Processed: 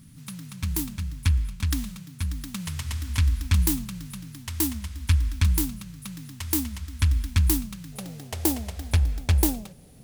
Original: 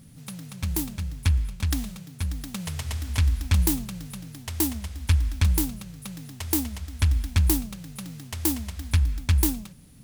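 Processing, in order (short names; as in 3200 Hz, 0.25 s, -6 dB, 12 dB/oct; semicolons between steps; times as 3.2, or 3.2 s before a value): band shelf 550 Hz -9 dB 1.3 oct, from 7.92 s +9.5 dB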